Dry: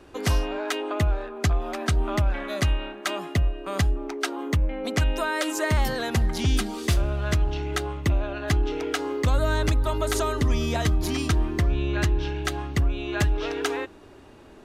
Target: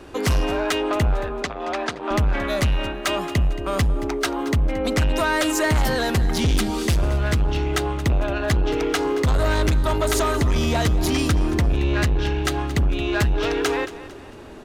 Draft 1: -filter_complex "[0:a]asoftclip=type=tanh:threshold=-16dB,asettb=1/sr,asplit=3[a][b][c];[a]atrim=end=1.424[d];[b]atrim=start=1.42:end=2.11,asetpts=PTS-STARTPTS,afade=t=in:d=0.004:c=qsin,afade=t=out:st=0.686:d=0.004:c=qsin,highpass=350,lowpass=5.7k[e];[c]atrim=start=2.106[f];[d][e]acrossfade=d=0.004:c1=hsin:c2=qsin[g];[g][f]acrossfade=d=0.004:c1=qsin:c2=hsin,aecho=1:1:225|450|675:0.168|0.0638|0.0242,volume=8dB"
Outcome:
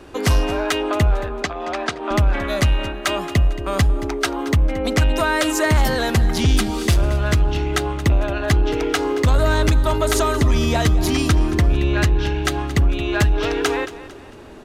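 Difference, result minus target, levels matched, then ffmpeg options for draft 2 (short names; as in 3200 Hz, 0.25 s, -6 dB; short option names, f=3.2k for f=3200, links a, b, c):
soft clip: distortion -9 dB
-filter_complex "[0:a]asoftclip=type=tanh:threshold=-23dB,asettb=1/sr,asplit=3[a][b][c];[a]atrim=end=1.424[d];[b]atrim=start=1.42:end=2.11,asetpts=PTS-STARTPTS,afade=t=in:d=0.004:c=qsin,afade=t=out:st=0.686:d=0.004:c=qsin,highpass=350,lowpass=5.7k[e];[c]atrim=start=2.106[f];[d][e]acrossfade=d=0.004:c1=hsin:c2=qsin[g];[g][f]acrossfade=d=0.004:c1=qsin:c2=hsin,aecho=1:1:225|450|675:0.168|0.0638|0.0242,volume=8dB"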